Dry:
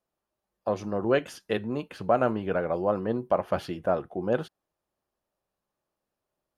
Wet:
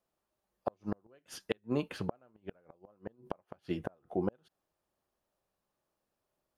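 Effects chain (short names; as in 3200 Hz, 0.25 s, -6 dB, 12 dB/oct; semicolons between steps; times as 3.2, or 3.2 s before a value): flipped gate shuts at -18 dBFS, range -39 dB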